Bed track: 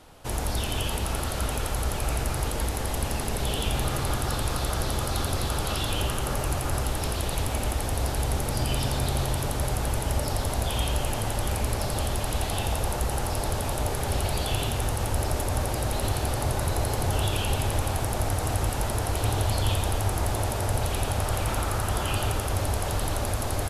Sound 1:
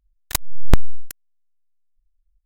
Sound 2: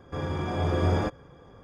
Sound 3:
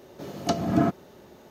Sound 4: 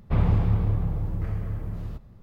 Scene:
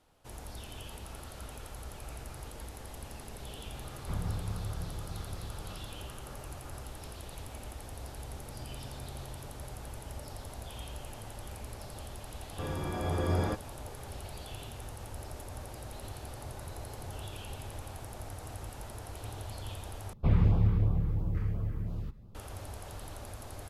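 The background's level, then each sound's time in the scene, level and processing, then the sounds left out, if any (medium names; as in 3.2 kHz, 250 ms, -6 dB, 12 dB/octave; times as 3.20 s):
bed track -16.5 dB
3.97 s: add 4 -14 dB
12.46 s: add 2 -5.5 dB
20.13 s: replace with 4 -3 dB + LFO notch sine 2.9 Hz 620–2000 Hz
not used: 1, 3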